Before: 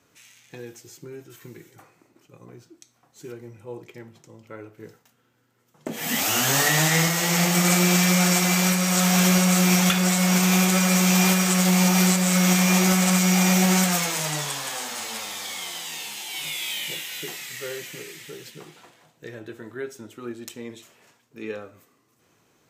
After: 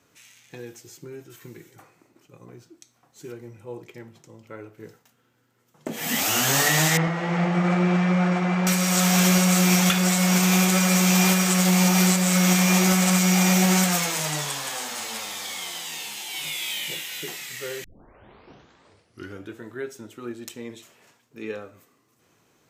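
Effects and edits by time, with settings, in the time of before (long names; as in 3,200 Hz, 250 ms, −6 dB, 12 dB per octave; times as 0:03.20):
0:06.97–0:08.67: low-pass filter 1,600 Hz
0:17.84: tape start 1.76 s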